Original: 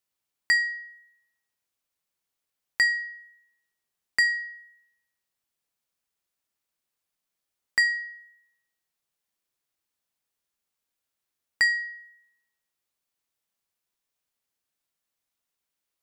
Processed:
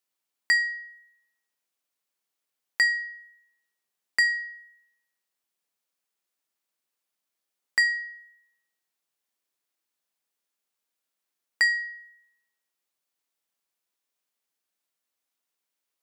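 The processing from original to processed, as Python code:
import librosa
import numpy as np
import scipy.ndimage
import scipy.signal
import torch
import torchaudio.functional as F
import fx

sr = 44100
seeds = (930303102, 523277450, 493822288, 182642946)

y = scipy.signal.sosfilt(scipy.signal.butter(2, 210.0, 'highpass', fs=sr, output='sos'), x)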